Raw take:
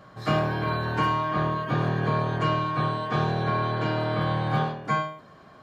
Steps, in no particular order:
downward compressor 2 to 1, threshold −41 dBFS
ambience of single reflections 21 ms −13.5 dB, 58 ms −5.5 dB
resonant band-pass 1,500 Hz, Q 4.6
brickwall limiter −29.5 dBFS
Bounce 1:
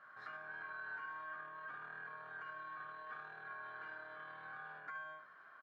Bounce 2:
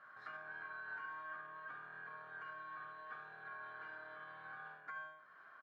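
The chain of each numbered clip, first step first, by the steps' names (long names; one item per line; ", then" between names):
ambience of single reflections, then brickwall limiter, then resonant band-pass, then downward compressor
ambience of single reflections, then downward compressor, then brickwall limiter, then resonant band-pass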